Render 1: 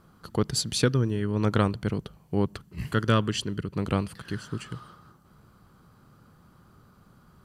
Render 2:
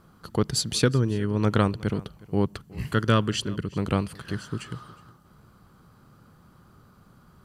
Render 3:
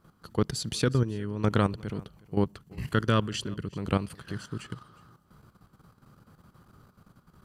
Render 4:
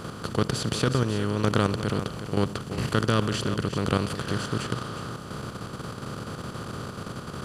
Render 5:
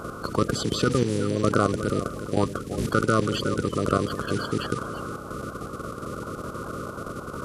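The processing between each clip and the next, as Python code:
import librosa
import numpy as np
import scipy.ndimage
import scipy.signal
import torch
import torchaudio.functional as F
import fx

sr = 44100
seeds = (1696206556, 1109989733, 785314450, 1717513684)

y1 = x + 10.0 ** (-22.0 / 20.0) * np.pad(x, (int(364 * sr / 1000.0), 0))[:len(x)]
y1 = y1 * 10.0 ** (1.5 / 20.0)
y2 = fx.level_steps(y1, sr, step_db=11)
y3 = fx.bin_compress(y2, sr, power=0.4)
y3 = y3 * 10.0 ** (-2.0 / 20.0)
y4 = fx.spec_quant(y3, sr, step_db=30)
y4 = y4 * 10.0 ** (2.0 / 20.0)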